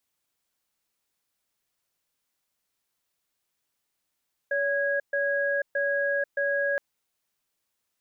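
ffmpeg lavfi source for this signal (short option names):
-f lavfi -i "aevalsrc='0.0501*(sin(2*PI*566*t)+sin(2*PI*1650*t))*clip(min(mod(t,0.62),0.49-mod(t,0.62))/0.005,0,1)':d=2.27:s=44100"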